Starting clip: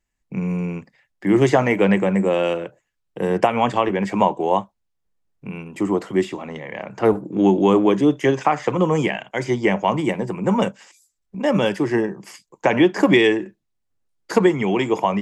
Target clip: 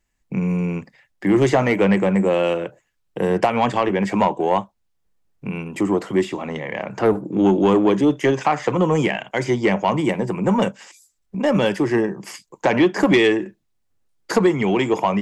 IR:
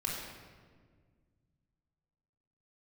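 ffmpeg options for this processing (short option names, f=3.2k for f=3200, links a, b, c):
-filter_complex "[0:a]asplit=2[a][b];[b]acompressor=threshold=-28dB:ratio=6,volume=-2dB[c];[a][c]amix=inputs=2:normalize=0,asoftclip=type=tanh:threshold=-7dB"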